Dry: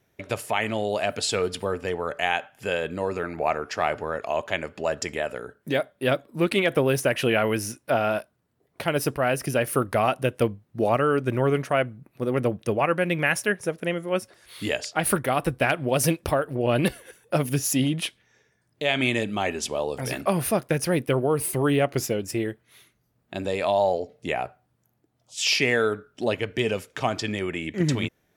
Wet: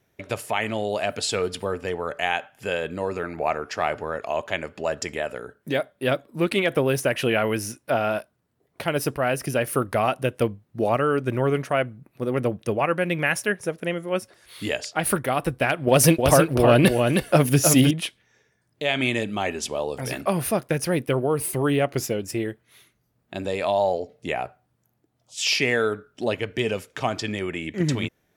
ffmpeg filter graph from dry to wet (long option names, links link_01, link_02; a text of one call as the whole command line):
ffmpeg -i in.wav -filter_complex "[0:a]asettb=1/sr,asplit=3[link_01][link_02][link_03];[link_01]atrim=end=15.874[link_04];[link_02]atrim=start=15.87:end=17.91,asetpts=PTS-STARTPTS,afade=type=in:duration=0.004:curve=qsin,afade=type=out:start_time=2.036:duration=0.004:curve=qsin,aecho=1:1:314:0.562,atrim=end_sample=89964,acontrast=62[link_05];[link_03]atrim=start=17.906[link_06];[link_04][link_05]acrossfade=duration=0.004:curve1=hsin:curve2=qsin[link_07];[link_07][link_06]acrossfade=duration=0.004:curve1=qsin:curve2=hsin" out.wav